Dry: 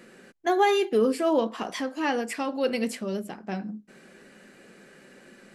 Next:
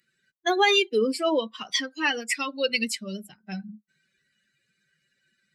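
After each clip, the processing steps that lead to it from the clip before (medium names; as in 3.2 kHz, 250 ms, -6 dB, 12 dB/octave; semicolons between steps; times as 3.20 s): expander on every frequency bin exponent 2; in parallel at -1.5 dB: compression, threshold -34 dBFS, peak gain reduction 15 dB; on the sum: frequency weighting D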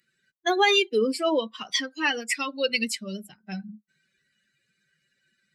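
no audible change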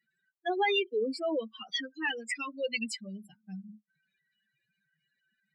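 spectral contrast enhancement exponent 2.2; trim -7 dB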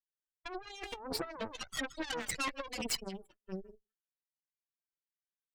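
speakerphone echo 160 ms, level -15 dB; compressor with a negative ratio -36 dBFS, ratio -1; Chebyshev shaper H 7 -17 dB, 8 -18 dB, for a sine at -21.5 dBFS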